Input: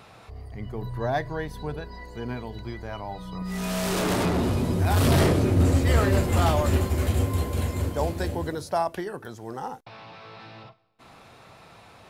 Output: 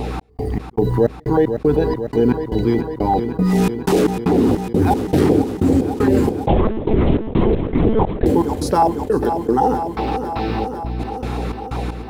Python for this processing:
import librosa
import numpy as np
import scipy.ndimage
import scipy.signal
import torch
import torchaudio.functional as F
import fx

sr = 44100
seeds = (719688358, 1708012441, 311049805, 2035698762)

y = fx.mod_noise(x, sr, seeds[0], snr_db=32)
y = fx.filter_lfo_notch(y, sr, shape='saw_down', hz=5.1, low_hz=450.0, high_hz=1500.0, q=0.92)
y = fx.small_body(y, sr, hz=(300.0, 430.0, 770.0), ring_ms=25, db=17)
y = fx.add_hum(y, sr, base_hz=60, snr_db=24)
y = fx.step_gate(y, sr, bpm=155, pattern='xx..xx..x', floor_db=-60.0, edge_ms=4.5)
y = fx.rider(y, sr, range_db=5, speed_s=0.5)
y = fx.echo_feedback(y, sr, ms=501, feedback_pct=55, wet_db=-14.5)
y = fx.lpc_monotone(y, sr, seeds[1], pitch_hz=220.0, order=10, at=(6.47, 8.26))
y = fx.env_flatten(y, sr, amount_pct=50)
y = y * 10.0 ** (-1.0 / 20.0)